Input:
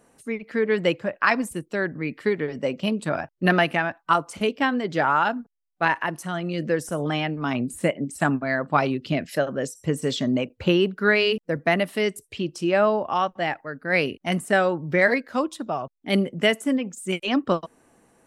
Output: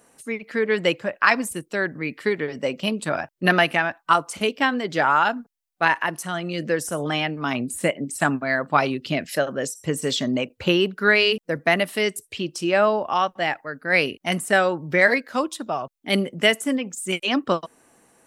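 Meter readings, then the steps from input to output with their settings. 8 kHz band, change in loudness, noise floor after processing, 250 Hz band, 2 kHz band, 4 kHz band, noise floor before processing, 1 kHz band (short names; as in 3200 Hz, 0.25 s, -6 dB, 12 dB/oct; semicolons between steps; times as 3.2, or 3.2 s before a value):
+6.5 dB, +1.5 dB, -68 dBFS, -1.0 dB, +3.5 dB, +4.5 dB, -69 dBFS, +2.0 dB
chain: tilt +1.5 dB/oct; gain +2 dB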